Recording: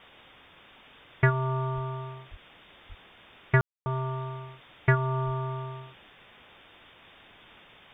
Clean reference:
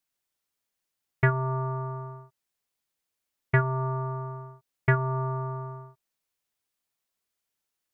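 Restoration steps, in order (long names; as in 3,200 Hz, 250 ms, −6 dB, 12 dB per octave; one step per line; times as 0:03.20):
high-pass at the plosives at 0:01.74/0:02.30/0:02.88/0:05.25
ambience match 0:03.61–0:03.86
noise reduction from a noise print 29 dB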